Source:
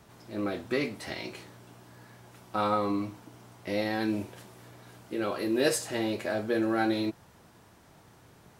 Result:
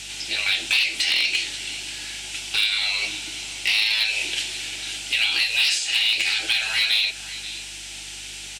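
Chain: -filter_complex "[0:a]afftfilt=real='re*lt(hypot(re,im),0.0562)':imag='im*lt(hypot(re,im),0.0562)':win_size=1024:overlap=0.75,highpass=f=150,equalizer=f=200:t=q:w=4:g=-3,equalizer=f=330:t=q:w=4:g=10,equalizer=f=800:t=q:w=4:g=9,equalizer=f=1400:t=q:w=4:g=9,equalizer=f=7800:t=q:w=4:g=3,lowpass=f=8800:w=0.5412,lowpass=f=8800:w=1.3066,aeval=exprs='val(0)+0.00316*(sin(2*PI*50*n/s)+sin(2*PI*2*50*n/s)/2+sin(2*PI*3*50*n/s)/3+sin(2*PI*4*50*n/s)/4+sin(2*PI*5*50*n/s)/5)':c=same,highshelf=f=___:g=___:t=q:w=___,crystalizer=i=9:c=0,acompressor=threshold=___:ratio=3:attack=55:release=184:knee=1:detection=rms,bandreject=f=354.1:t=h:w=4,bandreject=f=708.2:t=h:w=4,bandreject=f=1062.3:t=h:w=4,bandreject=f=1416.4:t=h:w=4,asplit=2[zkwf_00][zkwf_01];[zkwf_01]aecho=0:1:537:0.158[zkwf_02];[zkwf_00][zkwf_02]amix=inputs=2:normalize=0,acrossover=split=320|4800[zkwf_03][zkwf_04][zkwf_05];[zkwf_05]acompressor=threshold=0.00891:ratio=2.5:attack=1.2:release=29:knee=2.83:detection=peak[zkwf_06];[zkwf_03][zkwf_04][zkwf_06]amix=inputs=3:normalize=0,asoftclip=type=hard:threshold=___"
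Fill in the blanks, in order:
1800, 13.5, 3, 0.1, 0.224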